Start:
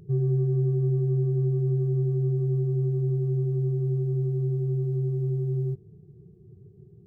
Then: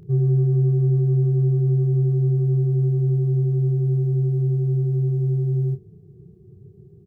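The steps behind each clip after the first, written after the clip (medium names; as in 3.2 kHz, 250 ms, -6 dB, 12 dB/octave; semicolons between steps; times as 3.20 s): doubling 30 ms -9.5 dB; trim +3.5 dB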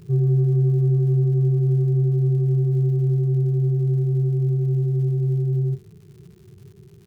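crackle 200 per s -45 dBFS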